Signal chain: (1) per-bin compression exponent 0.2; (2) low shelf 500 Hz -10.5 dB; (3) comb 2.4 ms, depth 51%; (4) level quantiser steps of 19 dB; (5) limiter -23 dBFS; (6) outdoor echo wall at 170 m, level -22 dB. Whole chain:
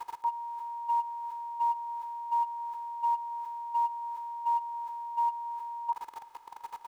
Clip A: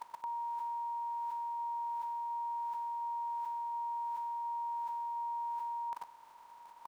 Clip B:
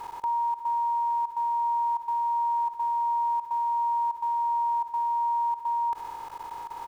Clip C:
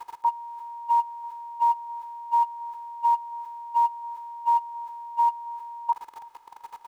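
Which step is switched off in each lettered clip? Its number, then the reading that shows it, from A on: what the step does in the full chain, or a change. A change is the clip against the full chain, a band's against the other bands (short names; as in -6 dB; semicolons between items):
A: 3, momentary loudness spread change -3 LU; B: 2, crest factor change -5.5 dB; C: 5, crest factor change +2.0 dB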